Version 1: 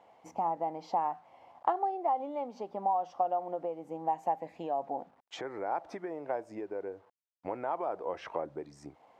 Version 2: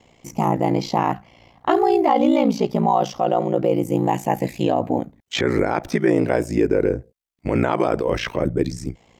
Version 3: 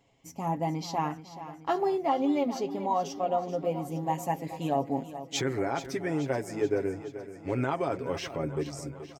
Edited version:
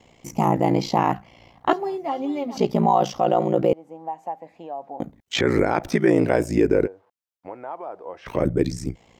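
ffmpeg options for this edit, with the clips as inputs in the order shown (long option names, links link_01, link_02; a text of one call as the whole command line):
ffmpeg -i take0.wav -i take1.wav -i take2.wav -filter_complex "[0:a]asplit=2[link_01][link_02];[1:a]asplit=4[link_03][link_04][link_05][link_06];[link_03]atrim=end=1.732[link_07];[2:a]atrim=start=1.728:end=2.572[link_08];[link_04]atrim=start=2.568:end=3.732[link_09];[link_01]atrim=start=3.728:end=5.002[link_10];[link_05]atrim=start=4.998:end=6.88[link_11];[link_02]atrim=start=6.84:end=8.29[link_12];[link_06]atrim=start=8.25[link_13];[link_07][link_08]acrossfade=duration=0.004:curve1=hsin:curve2=hsin[link_14];[link_14][link_09]acrossfade=duration=0.004:curve1=hsin:curve2=hsin[link_15];[link_15][link_10]acrossfade=duration=0.004:curve1=hsin:curve2=hsin[link_16];[link_16][link_11]acrossfade=duration=0.004:curve1=hsin:curve2=hsin[link_17];[link_17][link_12]acrossfade=duration=0.04:curve1=tri:curve2=tri[link_18];[link_18][link_13]acrossfade=duration=0.04:curve1=tri:curve2=tri" out.wav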